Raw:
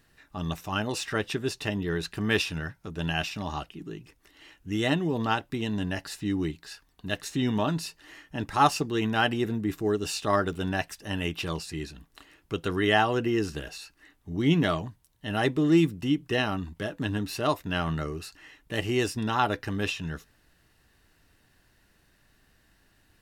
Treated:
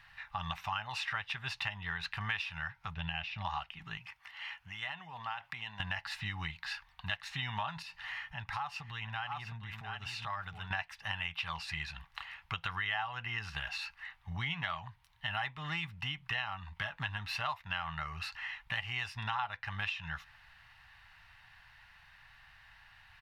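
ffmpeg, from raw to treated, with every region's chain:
ffmpeg -i in.wav -filter_complex "[0:a]asettb=1/sr,asplit=3[link_01][link_02][link_03];[link_01]atrim=end=2.944[link_04];[link_02]atrim=start=2.94:end=3.45,asetpts=PTS-STARTPTS,afade=type=in:duration=0.004:curve=qsin,afade=type=out:start_time=0.506:duration=0.004:curve=qsin,lowpass=3100,equalizer=frequency=1200:width_type=o:width=2.1:gain=-12[link_05];[link_03]atrim=start=3.446[link_06];[link_04][link_05]acrossfade=duration=0.004:curve1=hsin:curve2=qsin[link_07];[link_07][link_06]acrossfade=duration=0.004:curve1=qsin:curve2=hsin,asettb=1/sr,asplit=3[link_08][link_09][link_10];[link_08]atrim=end=3.974[link_11];[link_09]atrim=start=3.97:end=5.8,asetpts=PTS-STARTPTS,afade=type=in:duration=0.004:curve=qsin,afade=type=out:start_time=1.826:duration=0.004:curve=qsin,bandreject=frequency=3800:width=13,acompressor=threshold=-37dB:ratio=10:attack=3.2:release=140:knee=1:detection=peak,highpass=frequency=220:poles=1[link_12];[link_10]atrim=start=5.796[link_13];[link_11][link_12]acrossfade=duration=0.004:curve1=hsin:curve2=qsin[link_14];[link_14][link_13]acrossfade=duration=0.004:curve1=qsin:curve2=hsin,asettb=1/sr,asplit=3[link_15][link_16][link_17];[link_15]atrim=end=7.824[link_18];[link_16]atrim=start=7.82:end=10.71,asetpts=PTS-STARTPTS,afade=type=in:duration=0.004:curve=qsin,afade=type=out:start_time=2.886:duration=0.004:curve=qsin,aecho=1:1:705:0.335,atrim=end_sample=127449,acompressor=threshold=-46dB:ratio=2.5:attack=3.2:release=140:knee=1:detection=peak,equalizer=frequency=120:width=0.91:gain=4.5[link_19];[link_17]atrim=start=10.706[link_20];[link_18][link_19]acrossfade=duration=0.004:curve1=hsin:curve2=qsin[link_21];[link_21][link_20]acrossfade=duration=0.004:curve1=qsin:curve2=hsin,firequalizer=gain_entry='entry(120,0);entry(320,-30);entry(820,10);entry(1500,8);entry(2100,12);entry(7300,-10)':delay=0.05:min_phase=1,acompressor=threshold=-35dB:ratio=5" out.wav

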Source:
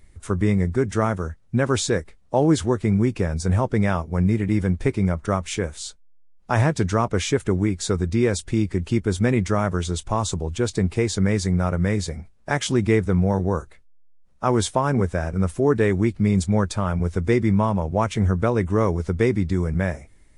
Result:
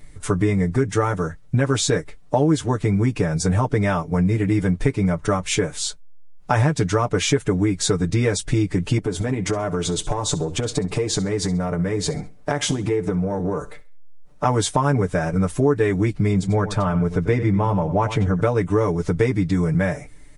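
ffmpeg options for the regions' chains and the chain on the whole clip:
ffmpeg -i in.wav -filter_complex "[0:a]asettb=1/sr,asplit=3[link_01][link_02][link_03];[link_01]atrim=end=8.984[link_04];[link_02]atrim=start=8.98:end=14.45,asetpts=PTS-STARTPTS,afade=type=in:duration=0.004:curve=qsin,afade=type=out:start_time=5.466:duration=0.004:curve=qsin,equalizer=frequency=450:width=0.6:gain=6.5,acompressor=threshold=-24dB:ratio=10:attack=3.2:release=140:knee=1:detection=peak,aecho=1:1:66|132|198:0.126|0.0415|0.0137,atrim=end_sample=241227[link_05];[link_03]atrim=start=14.446[link_06];[link_04][link_05]acrossfade=duration=0.004:curve1=hsin:curve2=qsin[link_07];[link_07][link_06]acrossfade=duration=0.004:curve1=qsin:curve2=hsin,asettb=1/sr,asplit=3[link_08][link_09][link_10];[link_08]atrim=end=16.334[link_11];[link_09]atrim=start=16.33:end=18.41,asetpts=PTS-STARTPTS,afade=type=in:duration=0.004:curve=qsin,afade=type=out:start_time=2.076:duration=0.004:curve=qsin,highshelf=frequency=4800:gain=-11,aecho=1:1:93:0.211,atrim=end_sample=91728[link_12];[link_10]atrim=start=18.406[link_13];[link_11][link_12]acrossfade=duration=0.004:curve1=hsin:curve2=qsin[link_14];[link_14][link_13]acrossfade=duration=0.004:curve1=qsin:curve2=hsin,aecho=1:1:6.8:0.96,acompressor=threshold=-23dB:ratio=3,volume=5.5dB" out.wav

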